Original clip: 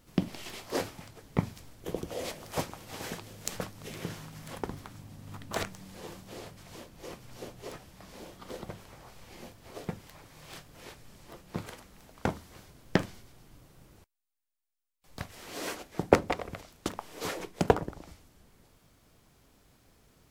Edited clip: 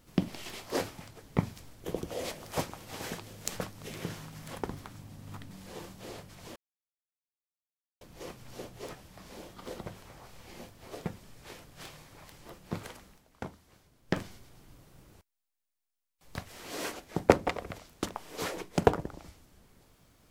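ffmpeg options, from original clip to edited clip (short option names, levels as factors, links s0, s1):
-filter_complex "[0:a]asplit=7[s0][s1][s2][s3][s4][s5][s6];[s0]atrim=end=5.512[s7];[s1]atrim=start=5.788:end=6.84,asetpts=PTS-STARTPTS,afade=t=out:st=1.048:d=0.004:c=hsin,apad=pad_dur=1.45[s8];[s2]atrim=start=6.84:end=10.012,asetpts=PTS-STARTPTS,afade=t=in:d=0.004:c=hsin[s9];[s3]atrim=start=10.008:end=11.212,asetpts=PTS-STARTPTS,areverse[s10];[s4]atrim=start=11.208:end=12.04,asetpts=PTS-STARTPTS,afade=t=out:st=0.682:d=0.15:silence=0.316228[s11];[s5]atrim=start=12.04:end=12.9,asetpts=PTS-STARTPTS,volume=0.316[s12];[s6]atrim=start=12.9,asetpts=PTS-STARTPTS,afade=t=in:d=0.15:silence=0.316228[s13];[s8][s9]concat=n=2:v=0:a=1[s14];[s7][s14]acrossfade=d=0.004:c1=hsin:c2=hsin[s15];[s15][s10]acrossfade=d=0.004:c1=hsin:c2=hsin[s16];[s11][s12][s13]concat=n=3:v=0:a=1[s17];[s16][s17]acrossfade=d=0.004:c1=hsin:c2=hsin"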